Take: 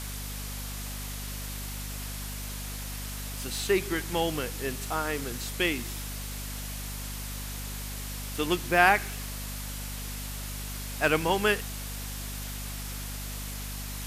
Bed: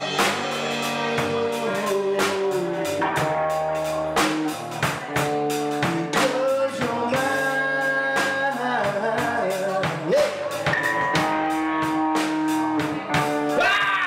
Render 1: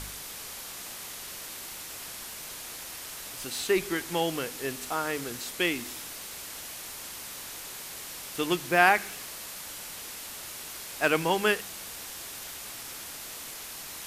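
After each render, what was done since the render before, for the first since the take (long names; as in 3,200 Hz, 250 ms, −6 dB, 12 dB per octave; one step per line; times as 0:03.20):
hum removal 50 Hz, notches 5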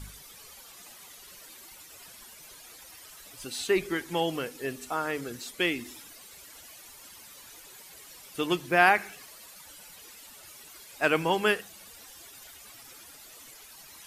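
broadband denoise 13 dB, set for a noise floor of −41 dBFS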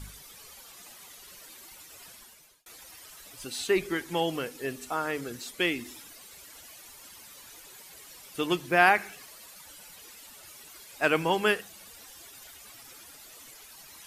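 0:02.10–0:02.66: fade out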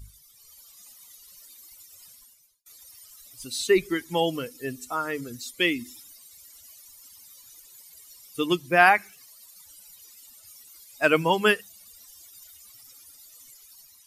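spectral dynamics exaggerated over time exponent 1.5
automatic gain control gain up to 6.5 dB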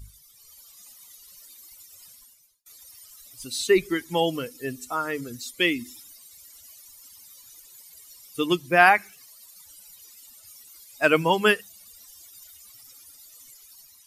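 level +1 dB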